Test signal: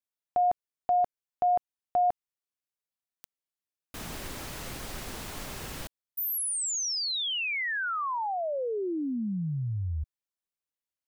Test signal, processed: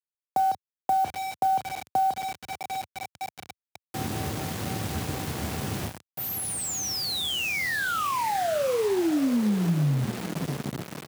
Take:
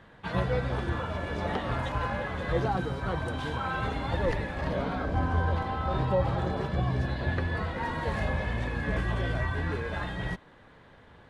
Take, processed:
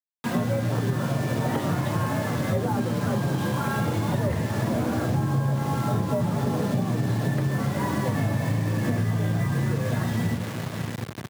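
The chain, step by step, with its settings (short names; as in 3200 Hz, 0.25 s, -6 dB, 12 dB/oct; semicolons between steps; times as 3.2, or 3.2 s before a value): doubler 32 ms -11 dB; in parallel at -11 dB: one-sided clip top -28.5 dBFS; on the sum: frequency shift +52 Hz; high shelf 5000 Hz -4.5 dB; notches 60/120/180 Hz; on a send: diffused feedback echo 0.68 s, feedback 72%, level -13 dB; on the sum: requantised 6-bit, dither none; HPF 88 Hz 24 dB/oct; low shelf 390 Hz +11.5 dB; compressor, threshold -21 dBFS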